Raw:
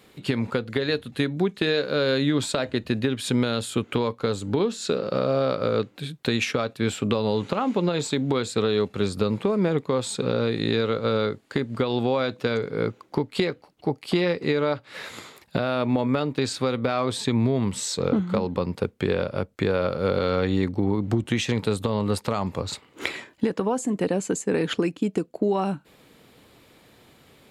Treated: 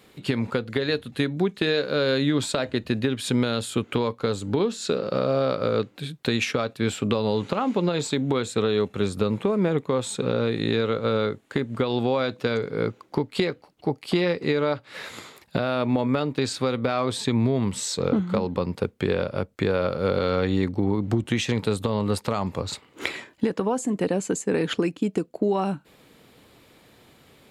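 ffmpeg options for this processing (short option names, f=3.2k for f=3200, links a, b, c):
-filter_complex "[0:a]asettb=1/sr,asplit=3[a][b][c];[a]atrim=end=8.164[d];[b]atrim=start=8.16:end=11.84,asetpts=PTS-STARTPTS,afade=t=in:d=0.004:c=qsin,afade=t=out:st=3.676:d=0.004:c=qsin,equalizer=f=4.7k:t=o:w=0.28:g=-7.5[e];[c]atrim=start=11.836[f];[d][e]acrossfade=d=0.004:c1=hsin:c2=qsin[g];[g][f]acrossfade=d=0.004:c1=qsin:c2=hsin"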